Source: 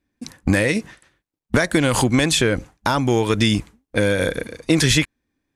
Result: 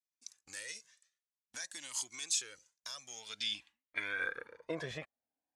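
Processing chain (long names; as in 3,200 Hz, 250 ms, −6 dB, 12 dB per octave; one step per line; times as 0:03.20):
band-pass filter sweep 6,400 Hz → 710 Hz, 0:03.06–0:04.82
flanger whose copies keep moving one way rising 0.51 Hz
level −3.5 dB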